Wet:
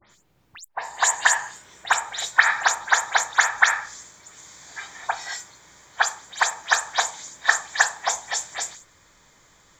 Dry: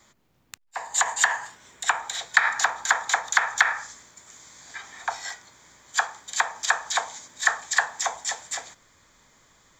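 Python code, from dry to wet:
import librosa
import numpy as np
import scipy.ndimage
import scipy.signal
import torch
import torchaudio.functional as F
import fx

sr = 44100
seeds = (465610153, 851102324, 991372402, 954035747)

y = fx.spec_delay(x, sr, highs='late', ms=105)
y = F.gain(torch.from_numpy(y), 3.0).numpy()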